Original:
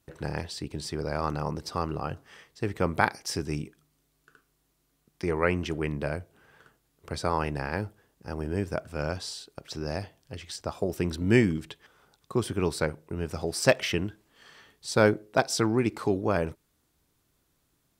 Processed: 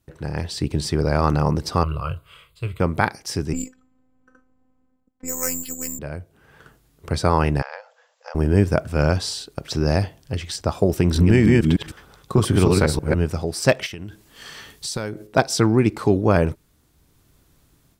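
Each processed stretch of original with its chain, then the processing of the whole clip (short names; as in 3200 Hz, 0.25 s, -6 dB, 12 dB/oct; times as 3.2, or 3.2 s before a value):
1.83–2.8 bell 390 Hz -12 dB 1.3 oct + fixed phaser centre 1200 Hz, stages 8 + doubler 25 ms -11 dB
3.53–5.99 careless resampling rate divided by 6×, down filtered, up zero stuff + low-pass opened by the level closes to 980 Hz, open at -17.5 dBFS + robotiser 256 Hz
7.62–8.35 compressor 5:1, threshold -36 dBFS + brick-wall FIR band-pass 470–7700 Hz
11–13.15 reverse delay 0.153 s, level -1 dB + compressor 4:1, threshold -23 dBFS
13.86–15.27 high shelf 3000 Hz +9 dB + compressor 8:1, threshold -36 dBFS
whole clip: low shelf 200 Hz +7.5 dB; AGC gain up to 11.5 dB; gain -1 dB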